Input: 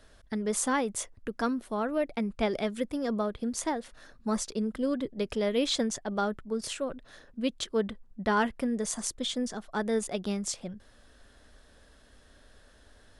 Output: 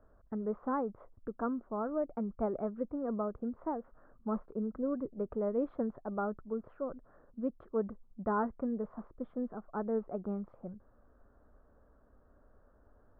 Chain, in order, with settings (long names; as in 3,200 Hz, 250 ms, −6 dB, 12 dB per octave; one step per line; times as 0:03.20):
Chebyshev low-pass filter 1,300 Hz, order 4
level −4.5 dB